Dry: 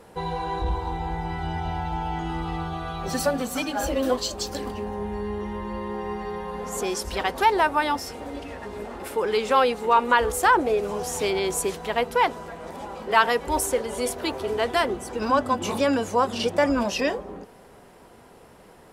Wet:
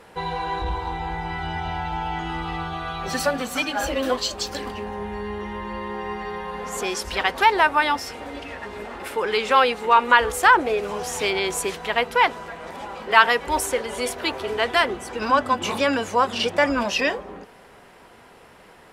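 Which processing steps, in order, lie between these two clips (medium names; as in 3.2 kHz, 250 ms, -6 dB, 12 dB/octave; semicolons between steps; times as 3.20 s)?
peaking EQ 2.2 kHz +9 dB 2.5 oct; trim -2 dB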